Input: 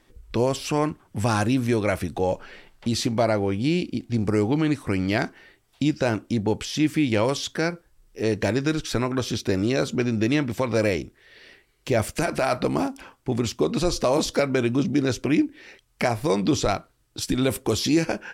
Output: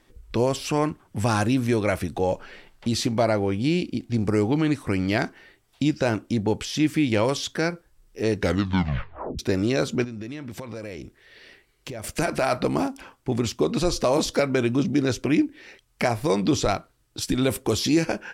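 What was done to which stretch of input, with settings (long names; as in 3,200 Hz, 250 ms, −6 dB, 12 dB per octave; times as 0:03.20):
0:08.35: tape stop 1.04 s
0:10.04–0:12.04: downward compressor 10 to 1, threshold −31 dBFS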